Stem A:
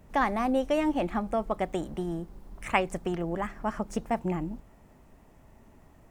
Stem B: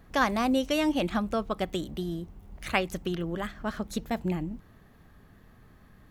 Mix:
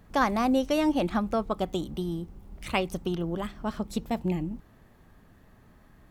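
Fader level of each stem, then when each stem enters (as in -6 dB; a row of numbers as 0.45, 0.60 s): -6.0, -2.0 dB; 0.00, 0.00 s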